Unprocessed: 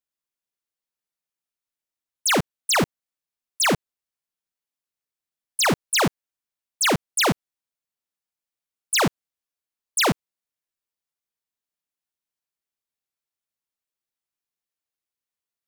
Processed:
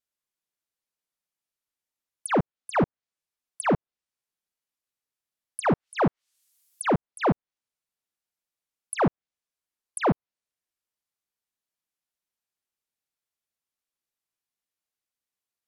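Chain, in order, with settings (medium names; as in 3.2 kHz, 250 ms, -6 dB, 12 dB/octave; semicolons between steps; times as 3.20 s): 5.61–6.86 s: added noise violet -63 dBFS; low-pass that closes with the level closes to 1.1 kHz, closed at -21 dBFS; vibrato 0.78 Hz 6.8 cents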